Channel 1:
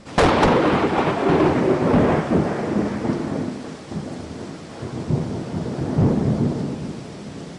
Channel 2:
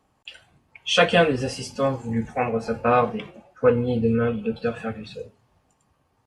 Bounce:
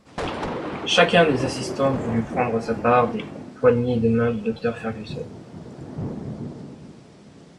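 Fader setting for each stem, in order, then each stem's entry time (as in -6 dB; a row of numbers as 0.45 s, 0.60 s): -12.5 dB, +1.5 dB; 0.00 s, 0.00 s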